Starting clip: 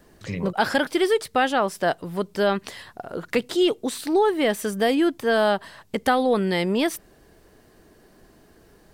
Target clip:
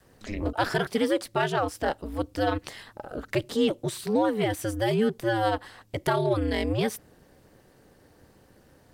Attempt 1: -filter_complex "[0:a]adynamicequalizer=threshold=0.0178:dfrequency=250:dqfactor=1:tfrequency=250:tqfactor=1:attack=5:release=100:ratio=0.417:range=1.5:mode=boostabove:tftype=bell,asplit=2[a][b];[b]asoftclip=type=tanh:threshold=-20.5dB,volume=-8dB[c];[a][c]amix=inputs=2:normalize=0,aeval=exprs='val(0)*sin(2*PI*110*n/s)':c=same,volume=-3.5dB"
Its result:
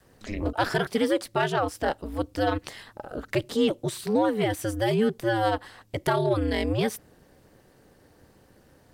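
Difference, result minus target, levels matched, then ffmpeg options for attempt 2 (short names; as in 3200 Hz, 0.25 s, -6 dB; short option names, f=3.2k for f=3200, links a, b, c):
soft clip: distortion -4 dB
-filter_complex "[0:a]adynamicequalizer=threshold=0.0178:dfrequency=250:dqfactor=1:tfrequency=250:tqfactor=1:attack=5:release=100:ratio=0.417:range=1.5:mode=boostabove:tftype=bell,asplit=2[a][b];[b]asoftclip=type=tanh:threshold=-27.5dB,volume=-8dB[c];[a][c]amix=inputs=2:normalize=0,aeval=exprs='val(0)*sin(2*PI*110*n/s)':c=same,volume=-3.5dB"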